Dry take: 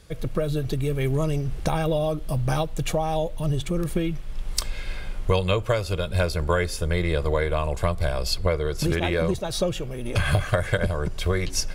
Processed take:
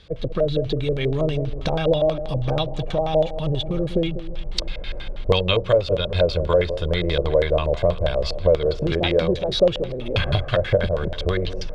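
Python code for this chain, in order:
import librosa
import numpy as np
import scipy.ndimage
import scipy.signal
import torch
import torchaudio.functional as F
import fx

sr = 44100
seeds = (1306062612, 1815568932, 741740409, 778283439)

y = fx.echo_alternate(x, sr, ms=196, hz=880.0, feedback_pct=62, wet_db=-11.5)
y = fx.filter_lfo_lowpass(y, sr, shape='square', hz=6.2, low_hz=560.0, high_hz=3600.0, q=3.2)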